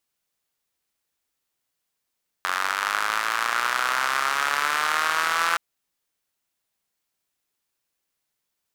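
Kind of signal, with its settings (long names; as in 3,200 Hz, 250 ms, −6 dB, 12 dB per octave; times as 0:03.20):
pulse-train model of a four-cylinder engine, changing speed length 3.12 s, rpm 2,700, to 5,100, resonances 1,300 Hz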